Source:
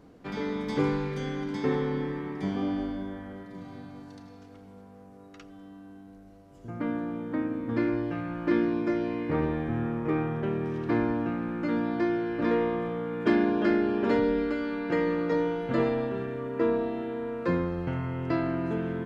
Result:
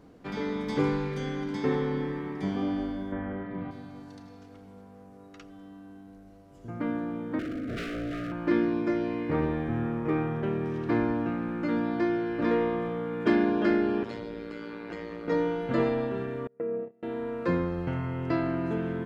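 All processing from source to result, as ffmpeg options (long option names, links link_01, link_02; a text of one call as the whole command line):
ffmpeg -i in.wav -filter_complex "[0:a]asettb=1/sr,asplit=3[link_01][link_02][link_03];[link_01]atrim=end=3.124[link_04];[link_02]atrim=start=3.12:end=3.71,asetpts=PTS-STARTPTS,afade=type=in:duration=0.004:curve=qsin,afade=type=out:start_time=0.586:duration=0.004:curve=qsin,lowpass=frequency=2700:width=0.5412,lowpass=frequency=2700:width=1.3066,acontrast=66[link_05];[link_03]atrim=start=3.706[link_06];[link_04][link_05]acrossfade=duration=0.004:curve1=hsin:curve2=qsin[link_07];[link_07][link_06]acrossfade=duration=0.004:curve1=qsin:curve2=hsin,asettb=1/sr,asplit=3[link_08][link_09][link_10];[link_08]atrim=end=7.394[link_11];[link_09]atrim=start=7.39:end=8.32,asetpts=PTS-STARTPTS,afade=type=in:duration=0.004:curve=qsin,afade=type=out:start_time=0.926:duration=0.004:curve=qsin,aecho=1:1:7.3:0.52,atrim=end_sample=41013,aeval=exprs='0.0376*(abs(mod(val(0)/0.0376+3,4)-2)-1)':channel_layout=same,asuperstop=centerf=910:order=12:qfactor=1.8[link_12];[link_10]atrim=start=8.316[link_13];[link_11][link_12]acrossfade=duration=0.004:curve1=hsin:curve2=qsin[link_14];[link_14][link_13]acrossfade=duration=0.004:curve1=qsin:curve2=hsin,asettb=1/sr,asplit=3[link_15][link_16][link_17];[link_15]atrim=end=14.034[link_18];[link_16]atrim=start=14.03:end=15.28,asetpts=PTS-STARTPTS,afade=type=in:duration=0.004:curve=qsin,afade=type=out:start_time=1.246:duration=0.004:curve=qsin,tremolo=f=110:d=0.824,lowshelf=frequency=150:gain=-8,acrossover=split=150|3000[link_19][link_20][link_21];[link_20]acompressor=threshold=-35dB:ratio=6:attack=3.2:release=140:knee=2.83:detection=peak[link_22];[link_19][link_22][link_21]amix=inputs=3:normalize=0[link_23];[link_17]atrim=start=15.276[link_24];[link_18][link_23]acrossfade=duration=0.004:curve1=hsin:curve2=qsin[link_25];[link_25][link_24]acrossfade=duration=0.004:curve1=qsin:curve2=hsin,asettb=1/sr,asplit=3[link_26][link_27][link_28];[link_26]atrim=end=16.474[link_29];[link_27]atrim=start=16.47:end=17.03,asetpts=PTS-STARTPTS,afade=type=in:duration=0.004:curve=qsin,afade=type=out:start_time=0.556:duration=0.004:curve=qsin,agate=range=-33dB:threshold=-28dB:ratio=16:release=100:detection=peak,acompressor=threshold=-32dB:ratio=8:attack=3.2:release=140:knee=1:detection=peak,highpass=130,equalizer=frequency=140:width_type=q:width=4:gain=5,equalizer=frequency=190:width_type=q:width=4:gain=8,equalizer=frequency=290:width_type=q:width=4:gain=-6,equalizer=frequency=460:width_type=q:width=4:gain=7,equalizer=frequency=990:width_type=q:width=4:gain=-10,equalizer=frequency=1600:width_type=q:width=4:gain=-5,lowpass=frequency=2200:width=0.5412,lowpass=frequency=2200:width=1.3066[link_30];[link_28]atrim=start=17.026[link_31];[link_29][link_30]acrossfade=duration=0.004:curve1=hsin:curve2=qsin[link_32];[link_32][link_31]acrossfade=duration=0.004:curve1=qsin:curve2=hsin" out.wav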